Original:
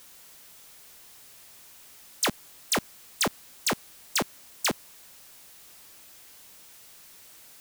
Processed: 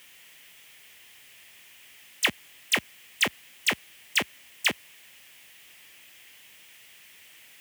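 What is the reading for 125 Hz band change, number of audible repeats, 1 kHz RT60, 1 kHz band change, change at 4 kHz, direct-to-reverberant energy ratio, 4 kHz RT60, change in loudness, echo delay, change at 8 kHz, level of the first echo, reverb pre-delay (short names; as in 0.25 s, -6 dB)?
-4.0 dB, none, none, -4.0 dB, +3.0 dB, none, none, +2.0 dB, none, -4.0 dB, none, none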